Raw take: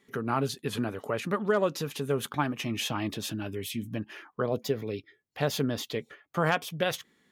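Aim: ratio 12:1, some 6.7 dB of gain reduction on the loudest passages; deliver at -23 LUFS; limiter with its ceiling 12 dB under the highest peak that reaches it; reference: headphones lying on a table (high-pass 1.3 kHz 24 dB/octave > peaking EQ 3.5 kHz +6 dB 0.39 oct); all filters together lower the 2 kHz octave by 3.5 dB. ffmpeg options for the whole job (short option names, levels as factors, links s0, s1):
-af "equalizer=f=2000:t=o:g=-4.5,acompressor=threshold=0.0398:ratio=12,alimiter=level_in=2:limit=0.0631:level=0:latency=1,volume=0.501,highpass=f=1300:w=0.5412,highpass=f=1300:w=1.3066,equalizer=f=3500:t=o:w=0.39:g=6,volume=9.44"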